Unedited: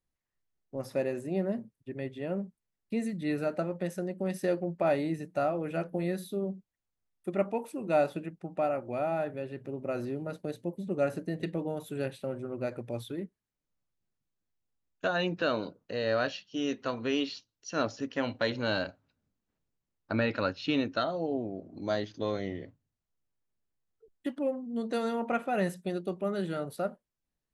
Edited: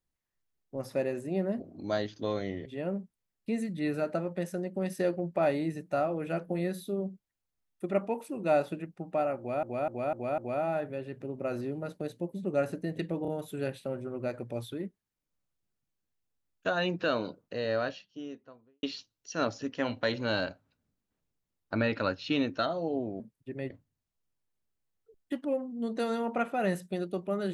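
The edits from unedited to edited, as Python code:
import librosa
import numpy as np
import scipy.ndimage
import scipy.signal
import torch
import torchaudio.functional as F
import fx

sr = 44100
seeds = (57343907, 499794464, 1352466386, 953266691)

y = fx.studio_fade_out(x, sr, start_s=15.79, length_s=1.42)
y = fx.edit(y, sr, fx.swap(start_s=1.6, length_s=0.5, other_s=21.58, other_length_s=1.06),
    fx.repeat(start_s=8.82, length_s=0.25, count=5),
    fx.stutter(start_s=11.66, slice_s=0.03, count=3), tone=tone)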